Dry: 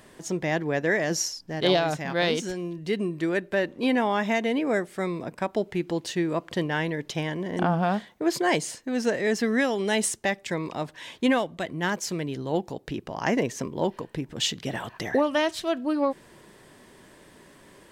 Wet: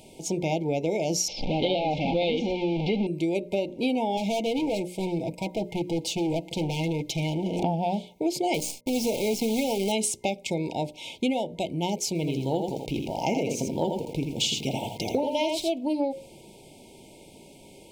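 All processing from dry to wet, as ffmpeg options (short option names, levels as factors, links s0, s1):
-filter_complex "[0:a]asettb=1/sr,asplit=3[s0][s1][s2];[s0]atrim=end=1.284[s3];[s1]atrim=start=1.28:end=3.07,asetpts=PTS-STARTPTS,afade=t=in:d=0.004:c=qsin,afade=t=out:st=1.786:d=0.004:c=qsin,aeval=exprs='val(0)+0.5*0.0596*sgn(val(0))':c=same,lowpass=f=3600:w=0.5412,lowpass=f=3600:w=1.3066,aecho=1:1:3.8:0.37,atrim=end_sample=78939[s4];[s2]atrim=start=3.066[s5];[s3][s4]acrossfade=d=0.004:c1=hsin:c2=qsin[s6];[s6][s5]acrossfade=d=0.004:c1=qsin:c2=hsin,asettb=1/sr,asplit=3[s7][s8][s9];[s7]atrim=end=4.174[s10];[s8]atrim=start=4.17:end=7.63,asetpts=PTS-STARTPTS,afade=t=in:d=0.004:c=qsin,afade=t=out:st=3.456:d=0.004:c=qsin,aecho=1:1:6.1:0.55,atrim=end_sample=152586,asoftclip=type=hard:threshold=0.0473[s11];[s9]atrim=start=7.626[s12];[s10][s11]acrossfade=d=0.004:c1=hsin:c2=qsin[s13];[s13][s12]acrossfade=d=0.004:c1=qsin:c2=hsin,asettb=1/sr,asplit=3[s14][s15][s16];[s14]atrim=end=8.544[s17];[s15]atrim=start=8.54:end=9.92,asetpts=PTS-STARTPTS,afade=t=in:d=0.004:c=qsin,afade=t=out:st=1.376:d=0.004:c=qsin,asoftclip=type=hard:threshold=0.119,acrusher=bits=6:dc=4:mix=0:aa=0.000001[s18];[s16]atrim=start=9.916[s19];[s17][s18]acrossfade=d=0.004:c1=hsin:c2=qsin[s20];[s20][s19]acrossfade=d=0.004:c1=qsin:c2=hsin,asettb=1/sr,asplit=3[s21][s22][s23];[s21]atrim=end=12.154[s24];[s22]atrim=start=12.15:end=15.72,asetpts=PTS-STARTPTS,afade=t=in:d=0.004:c=qsin,afade=t=out:st=3.566:d=0.004:c=qsin,aecho=1:1:83:0.562,atrim=end_sample=157437,aeval=exprs='val(0)*gte(abs(val(0)),0.00531)':c=same[s25];[s23]atrim=start=15.716[s26];[s24][s25]acrossfade=d=0.004:c1=hsin:c2=qsin[s27];[s27][s26]acrossfade=d=0.004:c1=qsin:c2=hsin,afftfilt=real='re*(1-between(b*sr/4096,950,2100))':imag='im*(1-between(b*sr/4096,950,2100))':win_size=4096:overlap=0.75,bandreject=f=60:t=h:w=6,bandreject=f=120:t=h:w=6,bandreject=f=180:t=h:w=6,bandreject=f=240:t=h:w=6,bandreject=f=300:t=h:w=6,bandreject=f=360:t=h:w=6,bandreject=f=420:t=h:w=6,bandreject=f=480:t=h:w=6,bandreject=f=540:t=h:w=6,bandreject=f=600:t=h:w=6,acompressor=threshold=0.0501:ratio=6,volume=1.5"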